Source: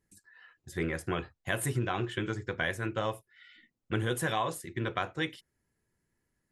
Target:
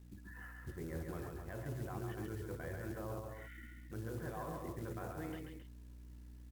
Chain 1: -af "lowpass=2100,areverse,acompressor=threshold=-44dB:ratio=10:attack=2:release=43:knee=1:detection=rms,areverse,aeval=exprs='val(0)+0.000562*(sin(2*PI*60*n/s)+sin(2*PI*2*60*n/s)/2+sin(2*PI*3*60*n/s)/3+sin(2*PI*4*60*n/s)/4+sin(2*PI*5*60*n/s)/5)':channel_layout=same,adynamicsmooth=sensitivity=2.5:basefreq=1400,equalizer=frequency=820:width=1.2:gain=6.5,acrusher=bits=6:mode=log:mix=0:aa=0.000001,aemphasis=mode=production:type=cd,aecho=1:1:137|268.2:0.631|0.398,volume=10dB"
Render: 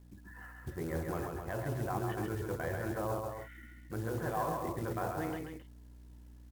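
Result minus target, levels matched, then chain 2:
downward compressor: peak gain reduction −6 dB; 1,000 Hz band +3.5 dB
-af "lowpass=2100,areverse,acompressor=threshold=-50.5dB:ratio=10:attack=2:release=43:knee=1:detection=rms,areverse,aeval=exprs='val(0)+0.000562*(sin(2*PI*60*n/s)+sin(2*PI*2*60*n/s)/2+sin(2*PI*3*60*n/s)/3+sin(2*PI*4*60*n/s)/4+sin(2*PI*5*60*n/s)/5)':channel_layout=same,adynamicsmooth=sensitivity=2.5:basefreq=1400,acrusher=bits=6:mode=log:mix=0:aa=0.000001,aemphasis=mode=production:type=cd,aecho=1:1:137|268.2:0.631|0.398,volume=10dB"

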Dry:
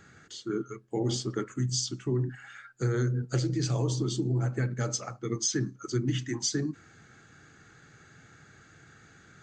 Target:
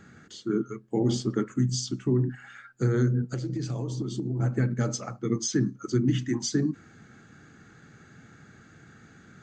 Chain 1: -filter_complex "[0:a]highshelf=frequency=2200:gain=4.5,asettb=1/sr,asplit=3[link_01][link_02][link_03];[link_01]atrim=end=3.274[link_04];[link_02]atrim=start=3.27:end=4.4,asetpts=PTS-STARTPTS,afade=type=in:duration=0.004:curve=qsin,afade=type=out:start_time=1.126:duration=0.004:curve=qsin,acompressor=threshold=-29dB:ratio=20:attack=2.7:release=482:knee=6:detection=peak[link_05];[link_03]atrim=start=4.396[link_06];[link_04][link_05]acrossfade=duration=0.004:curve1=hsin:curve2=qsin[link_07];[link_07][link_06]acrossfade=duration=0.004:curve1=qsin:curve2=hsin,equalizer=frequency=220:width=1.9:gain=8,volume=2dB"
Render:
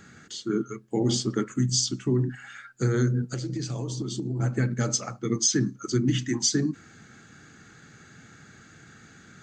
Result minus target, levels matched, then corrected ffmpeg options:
4,000 Hz band +6.0 dB
-filter_complex "[0:a]highshelf=frequency=2200:gain=-4.5,asettb=1/sr,asplit=3[link_01][link_02][link_03];[link_01]atrim=end=3.274[link_04];[link_02]atrim=start=3.27:end=4.4,asetpts=PTS-STARTPTS,afade=type=in:duration=0.004:curve=qsin,afade=type=out:start_time=1.126:duration=0.004:curve=qsin,acompressor=threshold=-29dB:ratio=20:attack=2.7:release=482:knee=6:detection=peak[link_05];[link_03]atrim=start=4.396[link_06];[link_04][link_05]acrossfade=duration=0.004:curve1=hsin:curve2=qsin[link_07];[link_07][link_06]acrossfade=duration=0.004:curve1=qsin:curve2=hsin,equalizer=frequency=220:width=1.9:gain=8,volume=2dB"

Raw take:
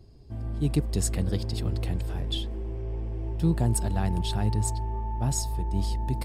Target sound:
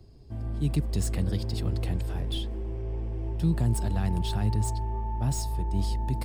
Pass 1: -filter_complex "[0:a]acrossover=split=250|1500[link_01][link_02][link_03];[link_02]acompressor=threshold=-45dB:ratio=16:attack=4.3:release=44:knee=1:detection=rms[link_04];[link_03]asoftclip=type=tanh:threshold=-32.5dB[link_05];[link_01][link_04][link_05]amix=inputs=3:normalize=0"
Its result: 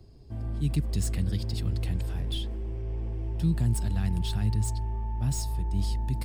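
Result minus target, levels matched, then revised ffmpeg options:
downward compressor: peak gain reduction +9.5 dB
-filter_complex "[0:a]acrossover=split=250|1500[link_01][link_02][link_03];[link_02]acompressor=threshold=-35dB:ratio=16:attack=4.3:release=44:knee=1:detection=rms[link_04];[link_03]asoftclip=type=tanh:threshold=-32.5dB[link_05];[link_01][link_04][link_05]amix=inputs=3:normalize=0"

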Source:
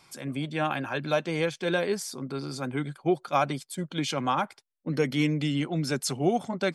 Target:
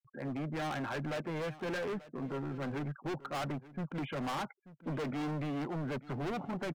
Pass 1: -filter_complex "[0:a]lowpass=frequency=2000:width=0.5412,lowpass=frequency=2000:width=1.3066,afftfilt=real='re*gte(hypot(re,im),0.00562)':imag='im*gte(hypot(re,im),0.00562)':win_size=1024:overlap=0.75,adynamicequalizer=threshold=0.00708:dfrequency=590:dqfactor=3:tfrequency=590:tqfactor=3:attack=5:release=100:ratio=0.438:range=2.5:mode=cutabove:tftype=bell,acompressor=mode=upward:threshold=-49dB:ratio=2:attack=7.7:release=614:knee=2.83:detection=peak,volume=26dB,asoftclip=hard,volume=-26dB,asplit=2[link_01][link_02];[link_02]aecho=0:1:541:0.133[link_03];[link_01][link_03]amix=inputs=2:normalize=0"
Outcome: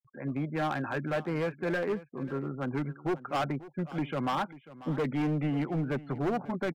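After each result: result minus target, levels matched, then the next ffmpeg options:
echo 345 ms early; gain into a clipping stage and back: distortion −5 dB
-filter_complex "[0:a]lowpass=frequency=2000:width=0.5412,lowpass=frequency=2000:width=1.3066,afftfilt=real='re*gte(hypot(re,im),0.00562)':imag='im*gte(hypot(re,im),0.00562)':win_size=1024:overlap=0.75,adynamicequalizer=threshold=0.00708:dfrequency=590:dqfactor=3:tfrequency=590:tqfactor=3:attack=5:release=100:ratio=0.438:range=2.5:mode=cutabove:tftype=bell,acompressor=mode=upward:threshold=-49dB:ratio=2:attack=7.7:release=614:knee=2.83:detection=peak,volume=26dB,asoftclip=hard,volume=-26dB,asplit=2[link_01][link_02];[link_02]aecho=0:1:886:0.133[link_03];[link_01][link_03]amix=inputs=2:normalize=0"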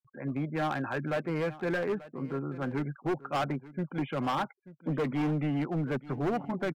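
gain into a clipping stage and back: distortion −5 dB
-filter_complex "[0:a]lowpass=frequency=2000:width=0.5412,lowpass=frequency=2000:width=1.3066,afftfilt=real='re*gte(hypot(re,im),0.00562)':imag='im*gte(hypot(re,im),0.00562)':win_size=1024:overlap=0.75,adynamicequalizer=threshold=0.00708:dfrequency=590:dqfactor=3:tfrequency=590:tqfactor=3:attack=5:release=100:ratio=0.438:range=2.5:mode=cutabove:tftype=bell,acompressor=mode=upward:threshold=-49dB:ratio=2:attack=7.7:release=614:knee=2.83:detection=peak,volume=34.5dB,asoftclip=hard,volume=-34.5dB,asplit=2[link_01][link_02];[link_02]aecho=0:1:886:0.133[link_03];[link_01][link_03]amix=inputs=2:normalize=0"

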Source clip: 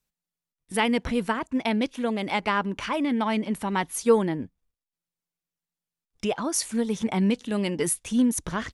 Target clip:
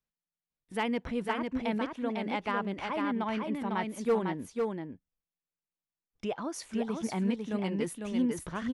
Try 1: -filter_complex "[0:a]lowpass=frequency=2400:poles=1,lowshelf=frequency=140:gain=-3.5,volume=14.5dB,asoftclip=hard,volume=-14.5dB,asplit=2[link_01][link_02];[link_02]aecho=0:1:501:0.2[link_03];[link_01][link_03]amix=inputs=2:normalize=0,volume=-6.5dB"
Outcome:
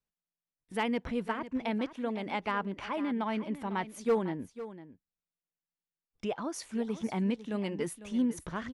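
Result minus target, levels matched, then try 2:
echo-to-direct −10 dB
-filter_complex "[0:a]lowpass=frequency=2400:poles=1,lowshelf=frequency=140:gain=-3.5,volume=14.5dB,asoftclip=hard,volume=-14.5dB,asplit=2[link_01][link_02];[link_02]aecho=0:1:501:0.631[link_03];[link_01][link_03]amix=inputs=2:normalize=0,volume=-6.5dB"

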